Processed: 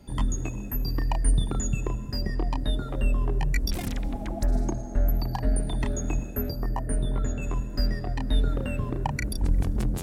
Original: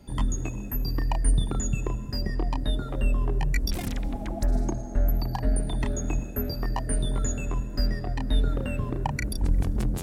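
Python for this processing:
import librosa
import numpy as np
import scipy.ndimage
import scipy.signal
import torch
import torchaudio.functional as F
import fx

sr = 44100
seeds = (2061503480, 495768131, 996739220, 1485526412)

y = fx.peak_eq(x, sr, hz=fx.line((6.5, 2500.0), (7.41, 11000.0)), db=-14.5, octaves=1.4, at=(6.5, 7.41), fade=0.02)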